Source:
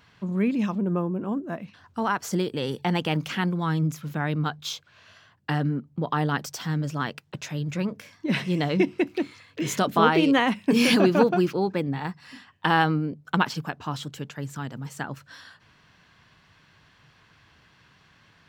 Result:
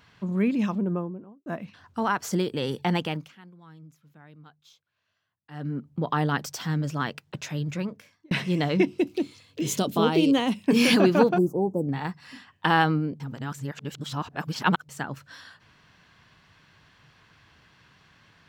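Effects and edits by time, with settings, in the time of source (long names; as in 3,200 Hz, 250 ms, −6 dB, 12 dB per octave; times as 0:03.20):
0:00.70–0:01.46: fade out and dull
0:02.95–0:05.87: duck −24 dB, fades 0.37 s
0:07.63–0:08.31: fade out
0:08.87–0:10.64: drawn EQ curve 410 Hz 0 dB, 1,800 Hz −12 dB, 3,000 Hz −1 dB, 9,200 Hz +3 dB
0:11.38–0:11.89: inverse Chebyshev band-stop filter 1,700–3,700 Hz, stop band 60 dB
0:13.20–0:14.89: reverse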